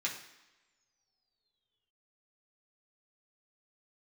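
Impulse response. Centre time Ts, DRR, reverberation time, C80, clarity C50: 26 ms, −4.0 dB, non-exponential decay, 10.5 dB, 7.5 dB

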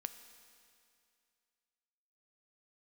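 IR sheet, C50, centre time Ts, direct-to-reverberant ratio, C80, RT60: 11.0 dB, 18 ms, 9.5 dB, 12.0 dB, 2.4 s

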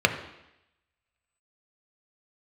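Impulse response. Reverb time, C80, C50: 0.85 s, 12.0 dB, 10.5 dB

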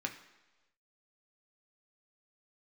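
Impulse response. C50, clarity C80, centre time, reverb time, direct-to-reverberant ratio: 10.5 dB, 13.0 dB, 15 ms, non-exponential decay, 2.5 dB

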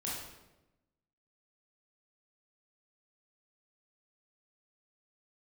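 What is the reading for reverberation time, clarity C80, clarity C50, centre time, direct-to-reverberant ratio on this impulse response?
1.0 s, 3.5 dB, 0.0 dB, 70 ms, −6.5 dB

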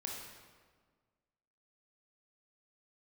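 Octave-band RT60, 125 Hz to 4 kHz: 1.9, 1.8, 1.7, 1.5, 1.3, 1.1 seconds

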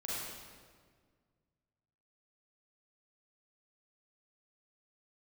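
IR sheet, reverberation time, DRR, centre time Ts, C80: 1.7 s, −7.5 dB, 125 ms, −1.0 dB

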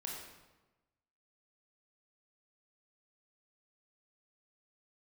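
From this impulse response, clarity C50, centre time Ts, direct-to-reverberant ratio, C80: 1.0 dB, 63 ms, −2.5 dB, 3.5 dB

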